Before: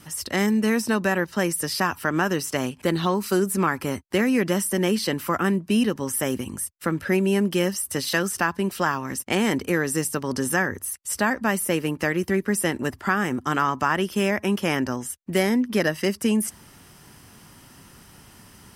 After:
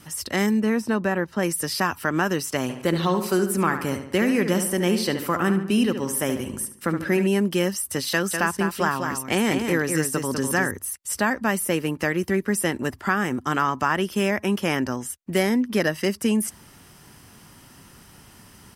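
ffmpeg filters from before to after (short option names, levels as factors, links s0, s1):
-filter_complex "[0:a]asettb=1/sr,asplit=3[s0][s1][s2];[s0]atrim=end=0.604[s3];[s1]atrim=start=0.6:end=1.43,asetpts=PTS-STARTPTS,afade=t=in:d=0.004:c=qsin,afade=t=out:st=0.826:d=0.004:c=qsin,highshelf=f=2500:g=-10[s4];[s2]atrim=start=1.426[s5];[s3][s4]acrossfade=d=0.004:c1=hsin:c2=qsin[s6];[s6][s5]acrossfade=d=0.004:c1=qsin:c2=hsin,asplit=3[s7][s8][s9];[s7]afade=t=out:st=2.68:d=0.02[s10];[s8]asplit=2[s11][s12];[s12]adelay=72,lowpass=f=4600:p=1,volume=0.376,asplit=2[s13][s14];[s14]adelay=72,lowpass=f=4600:p=1,volume=0.49,asplit=2[s15][s16];[s16]adelay=72,lowpass=f=4600:p=1,volume=0.49,asplit=2[s17][s18];[s18]adelay=72,lowpass=f=4600:p=1,volume=0.49,asplit=2[s19][s20];[s20]adelay=72,lowpass=f=4600:p=1,volume=0.49,asplit=2[s21][s22];[s22]adelay=72,lowpass=f=4600:p=1,volume=0.49[s23];[s11][s13][s15][s17][s19][s21][s23]amix=inputs=7:normalize=0,afade=t=in:st=2.68:d=0.02,afade=t=out:st=7.26:d=0.02[s24];[s9]afade=t=in:st=7.26:d=0.02[s25];[s10][s24][s25]amix=inputs=3:normalize=0,asettb=1/sr,asplit=3[s26][s27][s28];[s26]atrim=end=8.114[s29];[s27]atrim=start=8.11:end=10.71,asetpts=PTS-STARTPTS,afade=t=in:d=0.004:c=qsin,afade=t=out:st=2.596:d=0.004:c=qsin,aecho=1:1:199:0.501,atrim=end_sample=114660[s30];[s28]atrim=start=10.706[s31];[s29][s30]acrossfade=d=0.004:c1=hsin:c2=qsin[s32];[s32][s31]acrossfade=d=0.004:c1=qsin:c2=hsin"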